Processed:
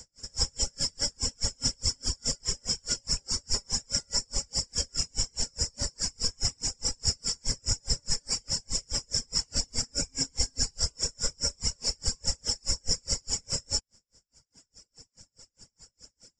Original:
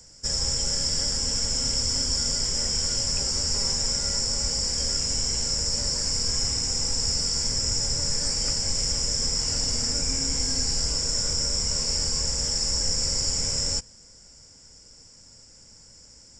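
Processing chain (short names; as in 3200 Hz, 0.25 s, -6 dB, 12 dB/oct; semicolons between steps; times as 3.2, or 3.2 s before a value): reverb removal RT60 1.7 s; dB-linear tremolo 4.8 Hz, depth 40 dB; gain +5 dB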